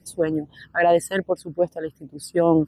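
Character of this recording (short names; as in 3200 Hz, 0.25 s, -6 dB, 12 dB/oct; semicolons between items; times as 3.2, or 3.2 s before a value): phasing stages 12, 2.5 Hz, lowest notch 630–1700 Hz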